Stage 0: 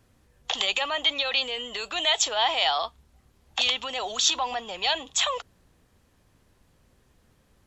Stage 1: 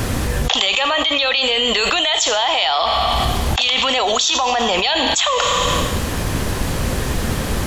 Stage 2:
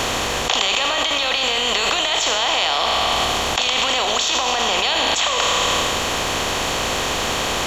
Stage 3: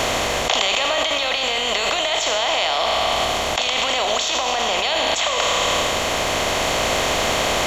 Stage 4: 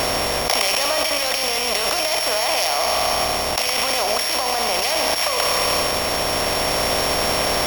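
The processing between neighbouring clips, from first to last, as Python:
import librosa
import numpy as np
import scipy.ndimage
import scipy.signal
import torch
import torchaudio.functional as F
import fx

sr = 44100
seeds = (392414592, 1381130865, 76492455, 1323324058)

y1 = fx.rev_schroeder(x, sr, rt60_s=0.99, comb_ms=27, drr_db=12.5)
y1 = fx.env_flatten(y1, sr, amount_pct=100)
y1 = y1 * librosa.db_to_amplitude(2.0)
y2 = fx.bin_compress(y1, sr, power=0.4)
y2 = fx.low_shelf(y2, sr, hz=210.0, db=-9.5)
y2 = y2 * librosa.db_to_amplitude(-8.0)
y3 = fx.rider(y2, sr, range_db=10, speed_s=2.0)
y3 = fx.small_body(y3, sr, hz=(630.0, 2100.0), ring_ms=20, db=7)
y3 = y3 * librosa.db_to_amplitude(-2.0)
y4 = np.r_[np.sort(y3[:len(y3) // 8 * 8].reshape(-1, 8), axis=1).ravel(), y3[len(y3) // 8 * 8:]]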